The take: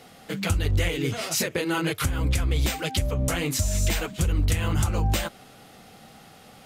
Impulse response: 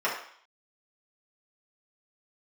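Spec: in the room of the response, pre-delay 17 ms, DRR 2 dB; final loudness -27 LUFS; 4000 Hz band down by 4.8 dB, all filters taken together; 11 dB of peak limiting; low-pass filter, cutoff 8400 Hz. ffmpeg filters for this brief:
-filter_complex "[0:a]lowpass=8.4k,equalizer=f=4k:t=o:g=-6.5,alimiter=limit=-24dB:level=0:latency=1,asplit=2[a][b];[1:a]atrim=start_sample=2205,adelay=17[c];[b][c]afir=irnorm=-1:irlink=0,volume=-14.5dB[d];[a][d]amix=inputs=2:normalize=0,volume=5.5dB"

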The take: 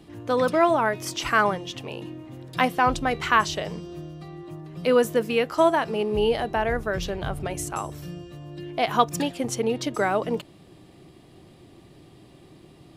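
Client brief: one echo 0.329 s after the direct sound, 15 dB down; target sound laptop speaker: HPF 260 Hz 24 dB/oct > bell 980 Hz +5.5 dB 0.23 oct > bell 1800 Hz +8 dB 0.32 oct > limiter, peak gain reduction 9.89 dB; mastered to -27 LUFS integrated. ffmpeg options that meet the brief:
-af "highpass=f=260:w=0.5412,highpass=f=260:w=1.3066,equalizer=f=980:t=o:w=0.23:g=5.5,equalizer=f=1.8k:t=o:w=0.32:g=8,aecho=1:1:329:0.178,volume=-1.5dB,alimiter=limit=-14dB:level=0:latency=1"

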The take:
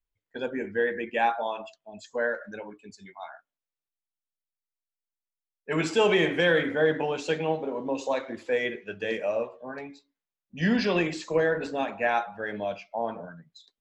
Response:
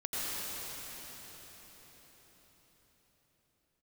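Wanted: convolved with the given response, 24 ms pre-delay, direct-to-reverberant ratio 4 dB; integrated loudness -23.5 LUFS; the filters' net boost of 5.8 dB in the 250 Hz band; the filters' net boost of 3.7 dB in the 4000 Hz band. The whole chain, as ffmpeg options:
-filter_complex "[0:a]equalizer=f=250:t=o:g=7.5,equalizer=f=4k:t=o:g=5,asplit=2[a][b];[1:a]atrim=start_sample=2205,adelay=24[c];[b][c]afir=irnorm=-1:irlink=0,volume=-10.5dB[d];[a][d]amix=inputs=2:normalize=0,volume=1dB"

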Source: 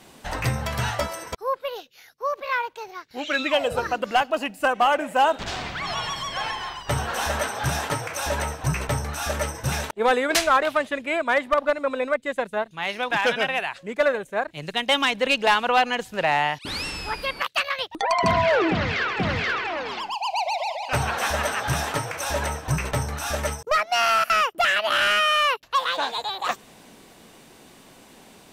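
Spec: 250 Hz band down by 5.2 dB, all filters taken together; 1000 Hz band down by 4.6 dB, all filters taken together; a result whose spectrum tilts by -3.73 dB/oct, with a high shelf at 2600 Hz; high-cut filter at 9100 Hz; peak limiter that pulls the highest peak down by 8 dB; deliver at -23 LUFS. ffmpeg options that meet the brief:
-af "lowpass=9.1k,equalizer=f=250:t=o:g=-7,equalizer=f=1k:t=o:g=-5,highshelf=f=2.6k:g=-5,volume=8dB,alimiter=limit=-14dB:level=0:latency=1"

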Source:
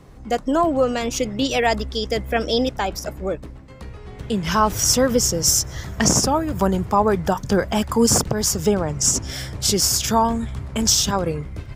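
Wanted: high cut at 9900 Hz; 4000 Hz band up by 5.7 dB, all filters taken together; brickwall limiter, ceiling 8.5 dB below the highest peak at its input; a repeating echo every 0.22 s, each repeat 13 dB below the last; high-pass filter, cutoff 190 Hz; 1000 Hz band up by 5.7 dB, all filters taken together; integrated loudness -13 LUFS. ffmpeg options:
-af "highpass=190,lowpass=9.9k,equalizer=f=1k:t=o:g=6.5,equalizer=f=4k:t=o:g=8.5,alimiter=limit=-8.5dB:level=0:latency=1,aecho=1:1:220|440|660:0.224|0.0493|0.0108,volume=6.5dB"

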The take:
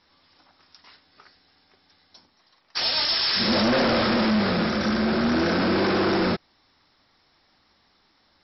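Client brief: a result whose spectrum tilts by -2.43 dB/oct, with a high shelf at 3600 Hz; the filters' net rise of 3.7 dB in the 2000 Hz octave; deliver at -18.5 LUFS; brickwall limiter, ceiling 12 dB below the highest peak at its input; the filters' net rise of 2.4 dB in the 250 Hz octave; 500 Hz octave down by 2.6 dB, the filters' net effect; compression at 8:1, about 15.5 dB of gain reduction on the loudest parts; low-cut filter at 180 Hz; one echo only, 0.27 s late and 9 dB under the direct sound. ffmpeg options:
-af "highpass=180,equalizer=f=250:t=o:g=6,equalizer=f=500:t=o:g=-6,equalizer=f=2k:t=o:g=6.5,highshelf=f=3.6k:g=-5.5,acompressor=threshold=-33dB:ratio=8,alimiter=level_in=9dB:limit=-24dB:level=0:latency=1,volume=-9dB,aecho=1:1:270:0.355,volume=22.5dB"

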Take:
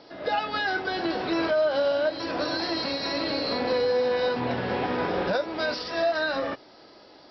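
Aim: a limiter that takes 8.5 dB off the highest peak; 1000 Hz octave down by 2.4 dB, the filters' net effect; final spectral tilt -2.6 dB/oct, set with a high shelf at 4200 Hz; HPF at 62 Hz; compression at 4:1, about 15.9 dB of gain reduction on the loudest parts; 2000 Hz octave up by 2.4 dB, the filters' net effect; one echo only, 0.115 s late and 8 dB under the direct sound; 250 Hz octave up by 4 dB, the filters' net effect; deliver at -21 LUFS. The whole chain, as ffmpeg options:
-af "highpass=62,equalizer=f=250:t=o:g=5.5,equalizer=f=1k:t=o:g=-5,equalizer=f=2k:t=o:g=6.5,highshelf=f=4.2k:g=-5.5,acompressor=threshold=-41dB:ratio=4,alimiter=level_in=12dB:limit=-24dB:level=0:latency=1,volume=-12dB,aecho=1:1:115:0.398,volume=22.5dB"

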